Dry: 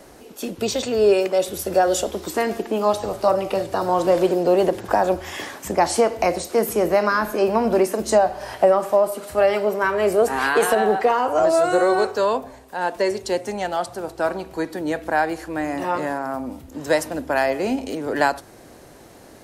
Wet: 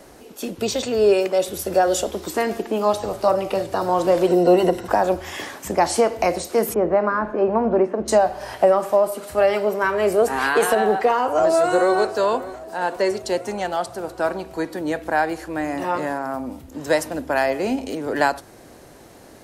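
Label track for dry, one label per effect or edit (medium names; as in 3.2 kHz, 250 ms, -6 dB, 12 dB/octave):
4.270000	4.880000	rippled EQ curve crests per octave 2, crest to trough 11 dB
6.740000	8.080000	low-pass 1.4 kHz
10.900000	11.960000	echo throw 590 ms, feedback 65%, level -17 dB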